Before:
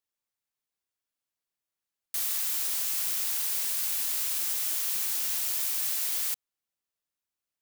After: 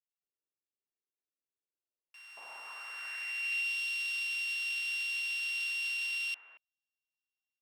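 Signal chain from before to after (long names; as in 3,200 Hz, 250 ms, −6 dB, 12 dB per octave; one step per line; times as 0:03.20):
samples sorted by size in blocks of 16 samples
multiband delay without the direct sound highs, lows 230 ms, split 1,500 Hz
band-pass filter sweep 380 Hz → 3,300 Hz, 0:01.76–0:03.77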